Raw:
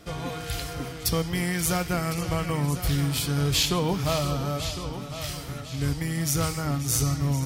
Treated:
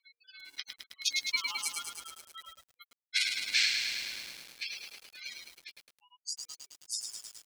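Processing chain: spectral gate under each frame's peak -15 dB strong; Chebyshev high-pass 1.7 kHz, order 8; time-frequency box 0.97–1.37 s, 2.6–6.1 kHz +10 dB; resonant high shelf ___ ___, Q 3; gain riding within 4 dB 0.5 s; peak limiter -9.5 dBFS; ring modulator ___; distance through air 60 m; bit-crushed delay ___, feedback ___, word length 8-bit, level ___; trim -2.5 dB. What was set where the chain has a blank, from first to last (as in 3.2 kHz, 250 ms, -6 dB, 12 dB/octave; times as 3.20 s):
2.3 kHz, +8.5 dB, 950 Hz, 106 ms, 80%, -4.5 dB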